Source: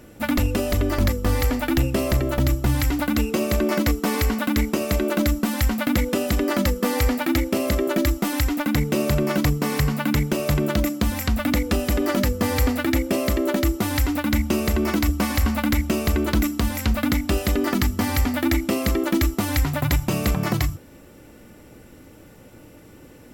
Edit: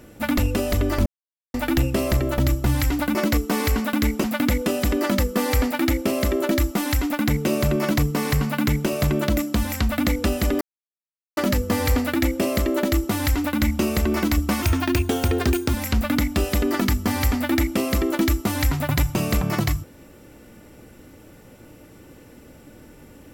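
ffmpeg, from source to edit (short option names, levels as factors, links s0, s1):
-filter_complex "[0:a]asplit=8[s0][s1][s2][s3][s4][s5][s6][s7];[s0]atrim=end=1.06,asetpts=PTS-STARTPTS,afade=t=out:st=1.056:d=0.004:c=hsin[s8];[s1]atrim=start=1.06:end=1.54,asetpts=PTS-STARTPTS,volume=0[s9];[s2]atrim=start=1.54:end=3.152,asetpts=PTS-STARTPTS,afade=t=in:d=0.004:c=hsin[s10];[s3]atrim=start=3.688:end=4.782[s11];[s4]atrim=start=5.708:end=12.08,asetpts=PTS-STARTPTS,afade=t=out:st=6.368:d=0.004:c=hsin,apad=pad_dur=0.76[s12];[s5]atrim=start=12.08:end=15.334,asetpts=PTS-STARTPTS,afade=t=in:d=0.004:c=hsin[s13];[s6]atrim=start=15.33:end=16.67,asetpts=PTS-STARTPTS,asetrate=52920,aresample=44100[s14];[s7]atrim=start=16.666[s15];[s8][s9][s10]concat=n=3:v=0:a=1[s16];[s16][s11]acrossfade=d=0.004:c1=hsin:c2=hsin[s17];[s12][s13]concat=n=2:v=0:a=1[s18];[s17][s18]acrossfade=d=0.004:c1=hsin:c2=hsin[s19];[s19][s14]acrossfade=d=0.004:c1=hsin:c2=hsin[s20];[s20][s15]acrossfade=d=0.004:c1=hsin:c2=hsin"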